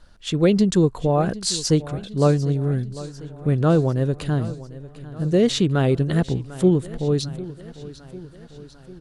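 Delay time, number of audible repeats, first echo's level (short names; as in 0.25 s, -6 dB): 0.748 s, 4, -17.0 dB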